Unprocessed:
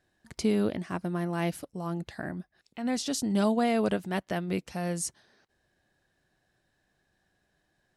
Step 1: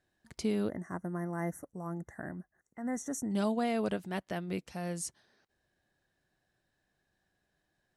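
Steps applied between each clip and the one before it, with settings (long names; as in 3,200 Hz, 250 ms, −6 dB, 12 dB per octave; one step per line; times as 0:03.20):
gain on a spectral selection 0:00.69–0:03.32, 2,100–5,600 Hz −28 dB
level −5.5 dB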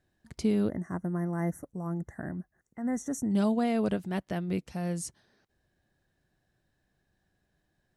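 low-shelf EQ 300 Hz +8.5 dB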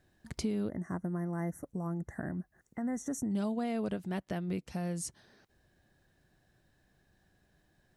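downward compressor 2.5 to 1, threshold −42 dBFS, peak gain reduction 13 dB
level +5.5 dB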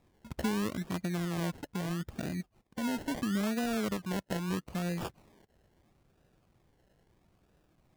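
sample-and-hold swept by an LFO 29×, swing 60% 0.76 Hz
level +1.5 dB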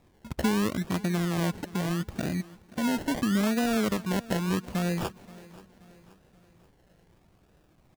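repeating echo 529 ms, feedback 47%, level −20 dB
level +6 dB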